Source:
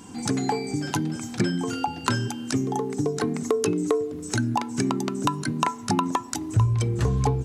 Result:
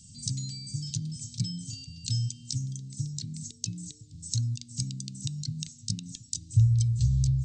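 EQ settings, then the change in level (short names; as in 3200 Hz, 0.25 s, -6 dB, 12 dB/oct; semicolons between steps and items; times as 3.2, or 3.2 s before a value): elliptic band-stop 140–4300 Hz, stop band 70 dB; brick-wall FIR low-pass 8600 Hz; 0.0 dB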